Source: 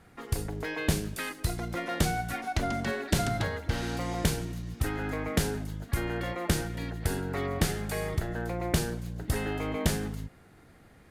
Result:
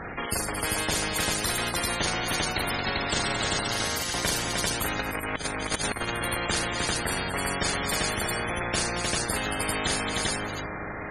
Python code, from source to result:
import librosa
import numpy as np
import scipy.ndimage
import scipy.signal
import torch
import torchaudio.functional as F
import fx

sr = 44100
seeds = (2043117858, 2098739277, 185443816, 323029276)

y = fx.rev_freeverb(x, sr, rt60_s=4.7, hf_ratio=0.3, predelay_ms=115, drr_db=19.5)
y = fx.cheby_harmonics(y, sr, harmonics=(4, 7), levels_db=(-13, -43), full_scale_db=-12.5)
y = fx.pre_emphasis(y, sr, coefficient=0.9, at=(3.63, 4.14))
y = fx.spec_topn(y, sr, count=64)
y = fx.echo_multitap(y, sr, ms=(42, 225, 307, 394), db=(-5.5, -19.0, -8.0, -3.0))
y = fx.over_compress(y, sr, threshold_db=-34.0, ratio=-0.5, at=(4.99, 6.13))
y = fx.spectral_comp(y, sr, ratio=4.0)